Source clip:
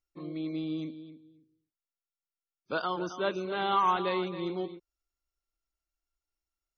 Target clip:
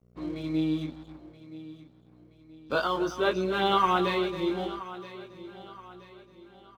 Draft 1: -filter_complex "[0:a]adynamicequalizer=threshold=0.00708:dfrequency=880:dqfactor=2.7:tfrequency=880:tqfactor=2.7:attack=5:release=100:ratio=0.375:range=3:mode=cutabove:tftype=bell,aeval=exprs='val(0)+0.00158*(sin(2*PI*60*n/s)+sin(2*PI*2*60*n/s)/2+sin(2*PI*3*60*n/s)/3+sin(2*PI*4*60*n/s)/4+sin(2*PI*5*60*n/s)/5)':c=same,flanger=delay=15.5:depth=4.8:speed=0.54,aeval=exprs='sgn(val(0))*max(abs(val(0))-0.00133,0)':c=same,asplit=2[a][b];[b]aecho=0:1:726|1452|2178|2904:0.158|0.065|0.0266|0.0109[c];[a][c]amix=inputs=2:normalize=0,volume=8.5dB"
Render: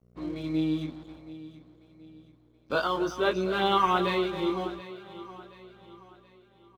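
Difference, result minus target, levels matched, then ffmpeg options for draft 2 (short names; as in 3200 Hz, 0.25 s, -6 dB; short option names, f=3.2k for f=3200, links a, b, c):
echo 0.249 s early
-filter_complex "[0:a]adynamicequalizer=threshold=0.00708:dfrequency=880:dqfactor=2.7:tfrequency=880:tqfactor=2.7:attack=5:release=100:ratio=0.375:range=3:mode=cutabove:tftype=bell,aeval=exprs='val(0)+0.00158*(sin(2*PI*60*n/s)+sin(2*PI*2*60*n/s)/2+sin(2*PI*3*60*n/s)/3+sin(2*PI*4*60*n/s)/4+sin(2*PI*5*60*n/s)/5)':c=same,flanger=delay=15.5:depth=4.8:speed=0.54,aeval=exprs='sgn(val(0))*max(abs(val(0))-0.00133,0)':c=same,asplit=2[a][b];[b]aecho=0:1:975|1950|2925|3900:0.158|0.065|0.0266|0.0109[c];[a][c]amix=inputs=2:normalize=0,volume=8.5dB"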